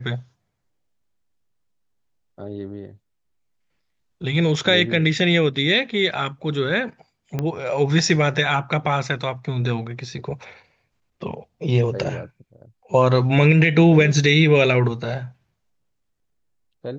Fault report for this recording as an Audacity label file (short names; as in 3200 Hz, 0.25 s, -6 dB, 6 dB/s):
7.390000	7.390000	pop -12 dBFS